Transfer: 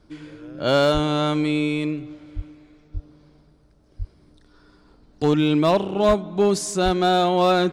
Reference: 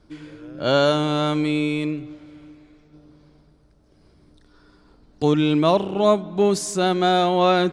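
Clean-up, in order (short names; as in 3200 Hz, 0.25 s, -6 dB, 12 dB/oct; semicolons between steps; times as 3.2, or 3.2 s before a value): clip repair -11 dBFS; de-plosive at 0.93/2.35/2.93/3.98/6.07/6.84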